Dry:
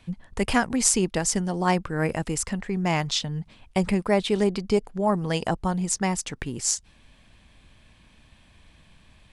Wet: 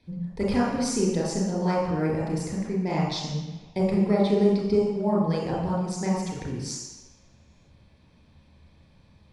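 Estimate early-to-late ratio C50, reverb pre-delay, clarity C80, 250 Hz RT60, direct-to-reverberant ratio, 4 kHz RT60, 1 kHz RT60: 0.0 dB, 28 ms, 3.5 dB, 1.0 s, -5.5 dB, 1.3 s, 1.2 s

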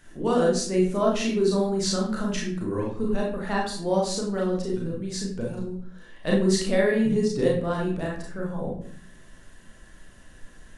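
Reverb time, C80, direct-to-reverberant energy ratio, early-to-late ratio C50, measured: 0.55 s, 9.0 dB, -3.5 dB, 3.5 dB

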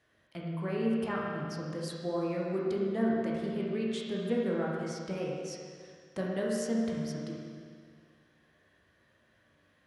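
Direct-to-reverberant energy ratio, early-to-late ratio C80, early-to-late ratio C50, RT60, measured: -4.5 dB, 0.5 dB, -1.5 dB, 2.0 s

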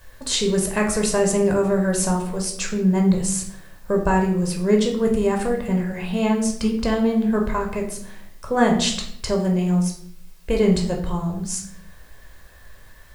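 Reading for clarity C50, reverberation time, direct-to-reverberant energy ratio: 7.5 dB, 0.70 s, 1.0 dB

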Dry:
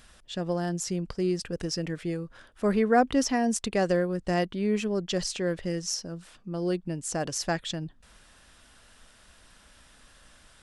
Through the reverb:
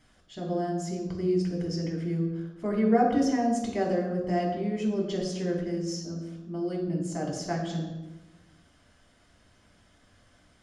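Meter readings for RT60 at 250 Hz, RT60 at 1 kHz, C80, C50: 1.4 s, 1.0 s, 6.0 dB, 4.0 dB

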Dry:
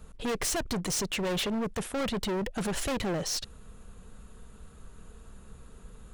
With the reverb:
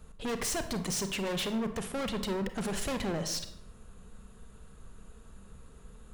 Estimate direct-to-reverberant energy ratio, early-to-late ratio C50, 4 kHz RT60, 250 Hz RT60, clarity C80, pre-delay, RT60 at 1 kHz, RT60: 8.5 dB, 10.5 dB, 0.50 s, 1.0 s, 13.5 dB, 30 ms, 0.75 s, 0.80 s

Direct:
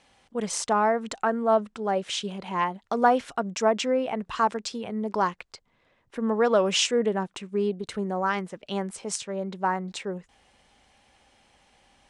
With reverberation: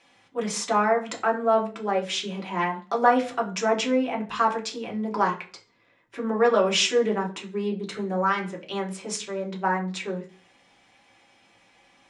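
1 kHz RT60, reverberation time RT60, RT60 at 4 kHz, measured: 0.35 s, 0.40 s, 0.40 s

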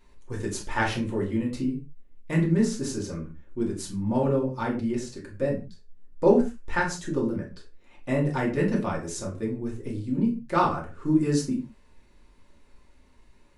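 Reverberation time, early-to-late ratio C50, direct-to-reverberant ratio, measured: no single decay rate, 9.0 dB, -3.0 dB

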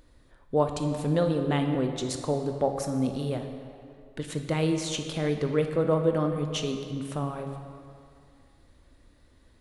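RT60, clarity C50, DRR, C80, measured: 2.4 s, 6.0 dB, 5.0 dB, 7.5 dB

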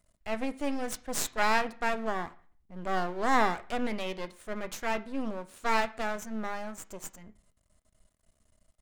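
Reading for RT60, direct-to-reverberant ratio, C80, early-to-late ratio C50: 0.45 s, 10.5 dB, 22.0 dB, 18.0 dB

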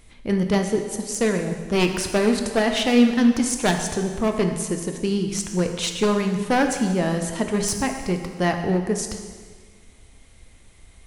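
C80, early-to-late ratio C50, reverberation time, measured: 8.0 dB, 6.5 dB, 1.6 s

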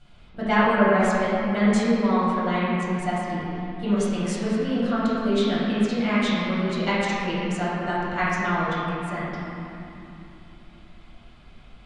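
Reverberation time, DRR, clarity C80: 3.0 s, -10.5 dB, -1.5 dB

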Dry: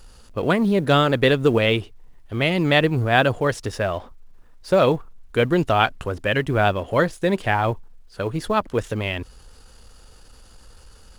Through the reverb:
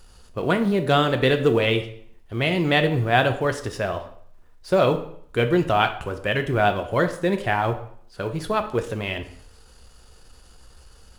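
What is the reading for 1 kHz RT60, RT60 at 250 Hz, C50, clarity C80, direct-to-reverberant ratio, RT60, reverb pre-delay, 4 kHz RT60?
0.60 s, 0.65 s, 11.5 dB, 15.0 dB, 6.5 dB, 0.60 s, 3 ms, 0.55 s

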